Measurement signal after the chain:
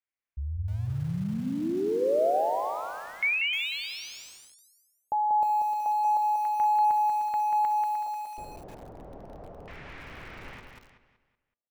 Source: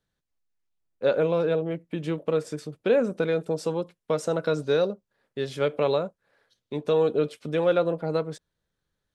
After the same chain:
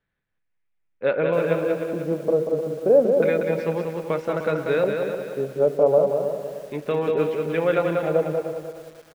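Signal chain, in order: LFO low-pass square 0.31 Hz 660–2200 Hz; bell 5600 Hz +3.5 dB 0.29 oct; de-hum 238.5 Hz, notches 11; on a send: feedback echo 0.188 s, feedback 38%, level -5 dB; on the sum: lo-fi delay 0.304 s, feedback 35%, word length 7-bit, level -9 dB

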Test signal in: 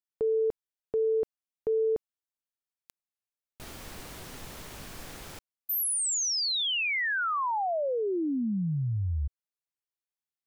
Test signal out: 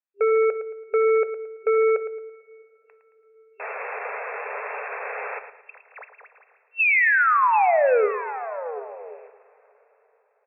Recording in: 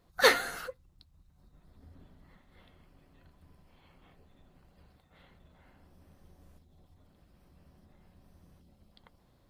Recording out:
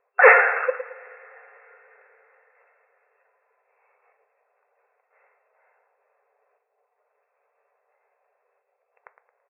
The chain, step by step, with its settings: sample leveller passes 3; in parallel at -3.5 dB: hard clip -19.5 dBFS; on the sum: feedback echo 0.111 s, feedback 34%, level -11 dB; two-slope reverb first 0.37 s, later 4.7 s, from -20 dB, DRR 12.5 dB; FFT band-pass 400–2700 Hz; gain +2 dB

